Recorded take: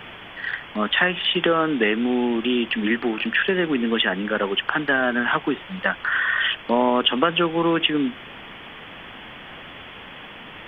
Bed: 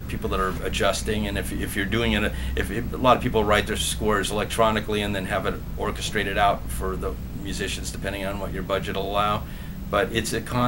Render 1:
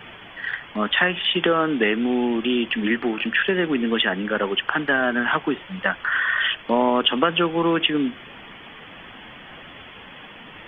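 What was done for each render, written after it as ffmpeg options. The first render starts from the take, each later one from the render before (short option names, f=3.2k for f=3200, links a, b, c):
-af "afftdn=nr=6:nf=-40"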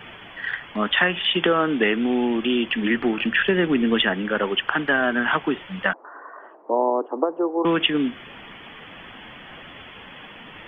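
-filter_complex "[0:a]asettb=1/sr,asplit=3[a][b][c];[a]atrim=end=2.944[d];[b]atrim=start=2.94:end=4.13,asetpts=PTS-STARTPTS,afade=t=in:d=0.004:c=qsin,afade=t=out:st=1.186:d=0.004:c=qsin,lowshelf=f=200:g=6.5[e];[c]atrim=start=4.126[f];[d][e]acrossfade=d=0.004:c1=hsin:c2=qsin[g];[g][f]acrossfade=d=0.004:c1=qsin:c2=hsin,asettb=1/sr,asplit=3[h][i][j];[h]atrim=end=5.934[k];[i]atrim=start=5.93:end=7.65,asetpts=PTS-STARTPTS,afade=t=in:d=0.004:c=qsin,afade=t=out:st=1.716:d=0.004:c=qsin,asuperpass=centerf=540:order=8:qfactor=0.77[l];[j]atrim=start=7.646[m];[k][l]acrossfade=d=0.004:c1=hsin:c2=qsin[n];[n][m]acrossfade=d=0.004:c1=qsin:c2=hsin"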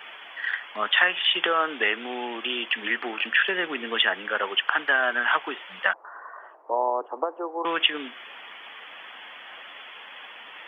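-af "highpass=700"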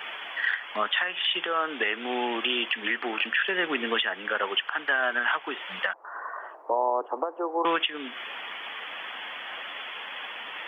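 -filter_complex "[0:a]asplit=2[a][b];[b]acompressor=threshold=-32dB:ratio=6,volume=-1.5dB[c];[a][c]amix=inputs=2:normalize=0,alimiter=limit=-14.5dB:level=0:latency=1:release=328"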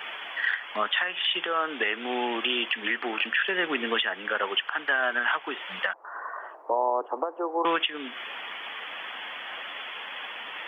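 -af anull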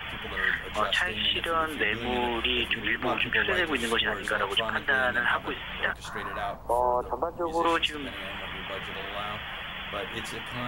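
-filter_complex "[1:a]volume=-13.5dB[a];[0:a][a]amix=inputs=2:normalize=0"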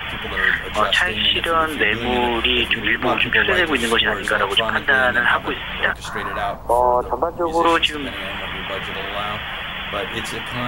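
-af "volume=9dB"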